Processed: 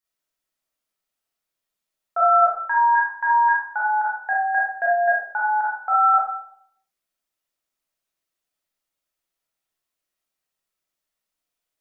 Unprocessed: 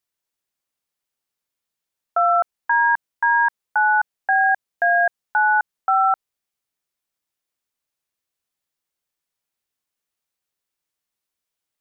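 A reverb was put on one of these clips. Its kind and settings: digital reverb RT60 0.67 s, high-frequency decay 0.5×, pre-delay 0 ms, DRR -7 dB; gain -6.5 dB

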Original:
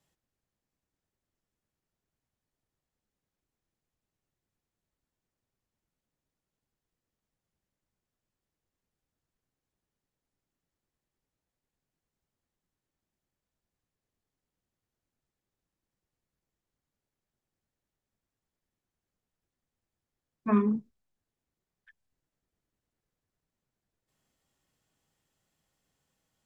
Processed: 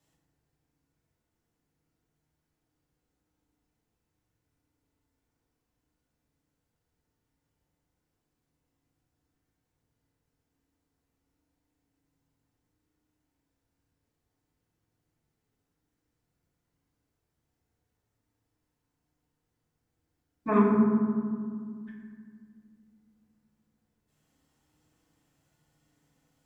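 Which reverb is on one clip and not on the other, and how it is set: FDN reverb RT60 2 s, low-frequency decay 1.55×, high-frequency decay 0.35×, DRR -5 dB

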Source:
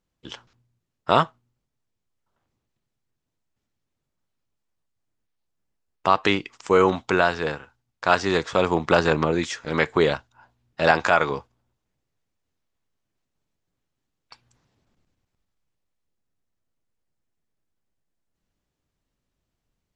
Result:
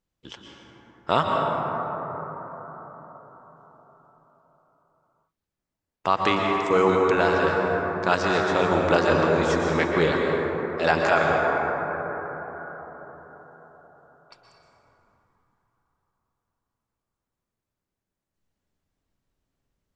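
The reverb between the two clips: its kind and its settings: plate-style reverb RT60 4.9 s, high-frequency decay 0.25×, pre-delay 0.105 s, DRR -1 dB; gain -3.5 dB

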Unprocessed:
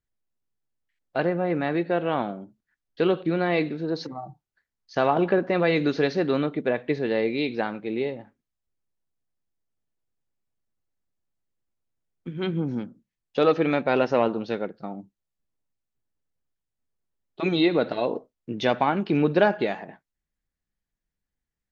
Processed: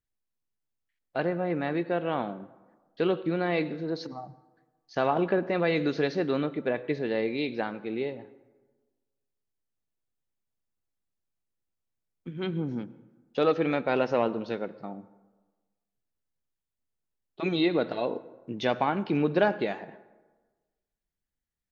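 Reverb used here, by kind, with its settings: plate-style reverb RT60 1.3 s, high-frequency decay 0.5×, pre-delay 80 ms, DRR 18.5 dB; gain -4 dB

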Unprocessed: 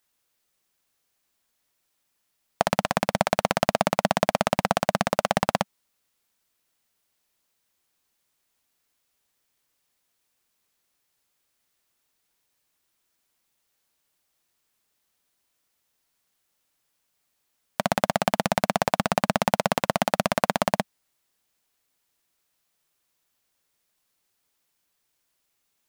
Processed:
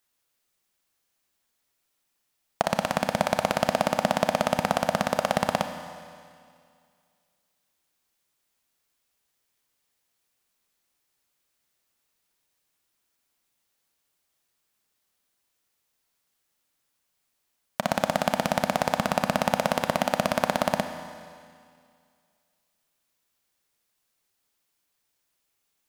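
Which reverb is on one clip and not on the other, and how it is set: Schroeder reverb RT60 2.2 s, combs from 28 ms, DRR 8 dB; gain -2 dB

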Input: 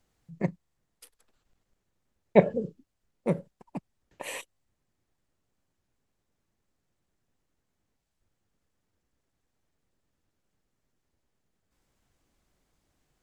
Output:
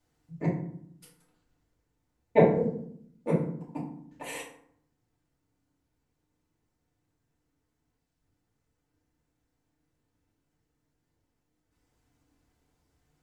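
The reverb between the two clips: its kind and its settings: FDN reverb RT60 0.65 s, low-frequency decay 1.55×, high-frequency decay 0.55×, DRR -7 dB; gain -7.5 dB

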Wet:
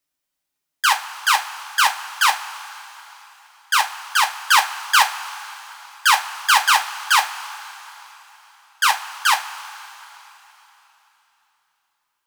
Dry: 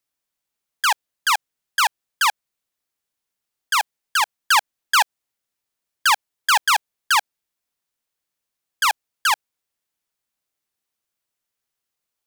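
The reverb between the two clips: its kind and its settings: two-slope reverb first 0.22 s, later 3.6 s, from -20 dB, DRR 1 dB

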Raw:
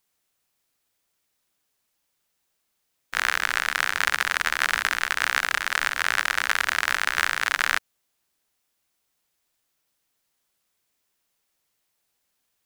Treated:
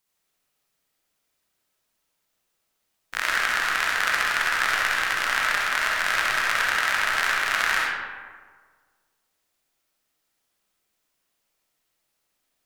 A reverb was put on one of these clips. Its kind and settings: digital reverb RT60 1.6 s, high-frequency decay 0.5×, pre-delay 25 ms, DRR -3.5 dB; gain -3.5 dB

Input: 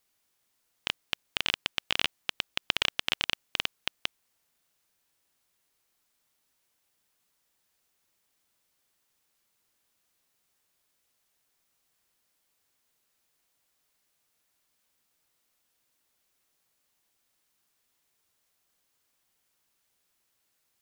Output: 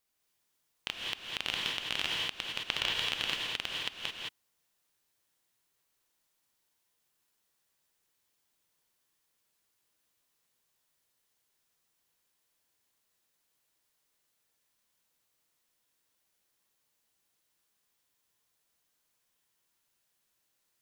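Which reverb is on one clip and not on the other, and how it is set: non-linear reverb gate 0.24 s rising, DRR -1.5 dB; gain -6.5 dB

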